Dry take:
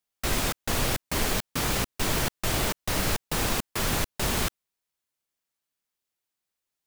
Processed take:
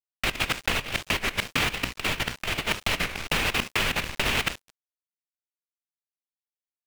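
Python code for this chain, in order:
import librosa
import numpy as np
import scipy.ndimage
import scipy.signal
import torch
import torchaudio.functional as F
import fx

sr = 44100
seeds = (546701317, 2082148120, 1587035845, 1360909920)

p1 = fx.peak_eq(x, sr, hz=2600.0, db=14.0, octaves=1.3)
p2 = fx.leveller(p1, sr, passes=1)
p3 = fx.hum_notches(p2, sr, base_hz=60, count=6)
p4 = fx.rev_schroeder(p3, sr, rt60_s=0.72, comb_ms=32, drr_db=13.5)
p5 = fx.level_steps(p4, sr, step_db=18)
p6 = p4 + (p5 * 10.0 ** (2.5 / 20.0))
p7 = fx.high_shelf(p6, sr, hz=4000.0, db=-8.5)
p8 = p7 + 10.0 ** (-23.0 / 20.0) * np.pad(p7, (int(269 * sr / 1000.0), 0))[:len(p7)]
p9 = np.sign(p8) * np.maximum(np.abs(p8) - 10.0 ** (-29.0 / 20.0), 0.0)
p10 = fx.over_compress(p9, sr, threshold_db=-23.0, ratio=-0.5)
p11 = fx.record_warp(p10, sr, rpm=33.33, depth_cents=160.0)
y = p11 * 10.0 ** (-3.5 / 20.0)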